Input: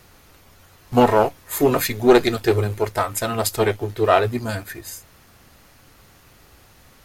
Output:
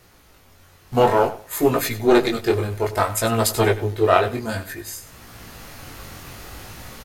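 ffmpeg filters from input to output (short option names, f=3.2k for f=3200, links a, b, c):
-filter_complex "[0:a]asplit=2[a][b];[b]aecho=0:1:97|194:0.168|0.0369[c];[a][c]amix=inputs=2:normalize=0,dynaudnorm=f=450:g=3:m=14.5dB,flanger=delay=17:depth=5.8:speed=0.57,volume=1dB"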